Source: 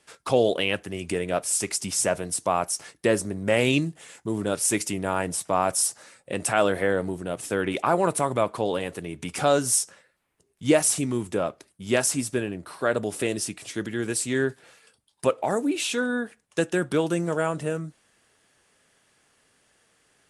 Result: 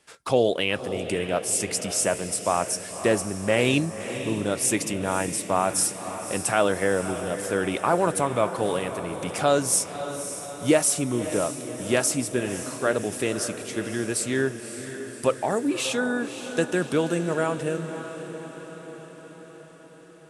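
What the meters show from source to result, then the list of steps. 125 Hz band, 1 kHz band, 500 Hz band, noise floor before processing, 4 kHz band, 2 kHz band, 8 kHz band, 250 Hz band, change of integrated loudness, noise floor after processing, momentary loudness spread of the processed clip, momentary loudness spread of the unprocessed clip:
+0.5 dB, +0.5 dB, +0.5 dB, -69 dBFS, +0.5 dB, +0.5 dB, +0.5 dB, +0.5 dB, +0.5 dB, -46 dBFS, 11 LU, 9 LU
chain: diffused feedback echo 0.56 s, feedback 61%, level -10.5 dB

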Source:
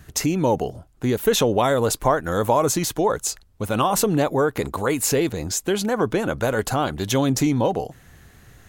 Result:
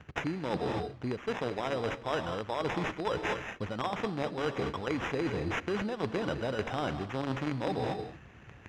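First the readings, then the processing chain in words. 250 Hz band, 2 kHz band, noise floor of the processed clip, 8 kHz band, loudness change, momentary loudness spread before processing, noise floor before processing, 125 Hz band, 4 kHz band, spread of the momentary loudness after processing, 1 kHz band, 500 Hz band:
-12.0 dB, -7.0 dB, -52 dBFS, -28.5 dB, -12.0 dB, 6 LU, -52 dBFS, -11.5 dB, -12.0 dB, 3 LU, -11.5 dB, -12.0 dB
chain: in parallel at -6.5 dB: companded quantiser 2-bit; on the sum: HPF 70 Hz; non-linear reverb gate 0.27 s rising, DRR 11 dB; sample-and-hold 10×; LPF 3600 Hz 12 dB/oct; reverse; compressor 12:1, threshold -26 dBFS, peak gain reduction 21 dB; reverse; gain -3 dB

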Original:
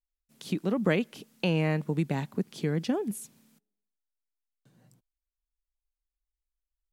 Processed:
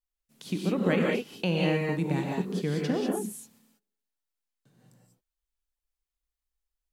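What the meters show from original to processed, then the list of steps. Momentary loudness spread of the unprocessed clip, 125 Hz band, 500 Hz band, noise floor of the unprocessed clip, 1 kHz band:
12 LU, 0.0 dB, +2.5 dB, under -85 dBFS, +2.5 dB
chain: non-linear reverb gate 0.22 s rising, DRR -1.5 dB; gain -1.5 dB

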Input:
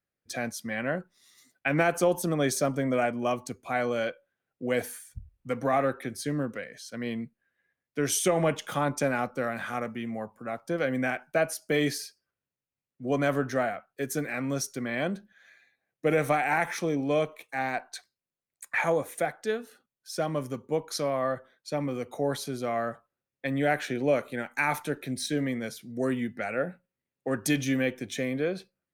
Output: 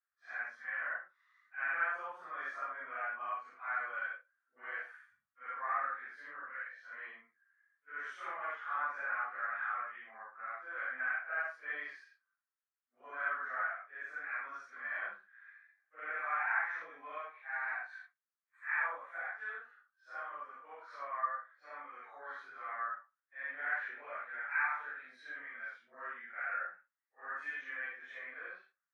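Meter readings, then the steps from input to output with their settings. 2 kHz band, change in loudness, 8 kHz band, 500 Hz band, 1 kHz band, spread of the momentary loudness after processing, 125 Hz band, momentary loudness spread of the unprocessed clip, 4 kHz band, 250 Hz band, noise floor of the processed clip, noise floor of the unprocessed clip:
-3.0 dB, -10.0 dB, under -35 dB, -25.0 dB, -7.0 dB, 15 LU, under -40 dB, 11 LU, under -20 dB, under -35 dB, under -85 dBFS, under -85 dBFS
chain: phase scrambler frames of 0.2 s; in parallel at +1 dB: compressor, threshold -35 dBFS, peak gain reduction 15 dB; on the sum: Butterworth band-pass 1400 Hz, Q 1.9; gain -3.5 dB

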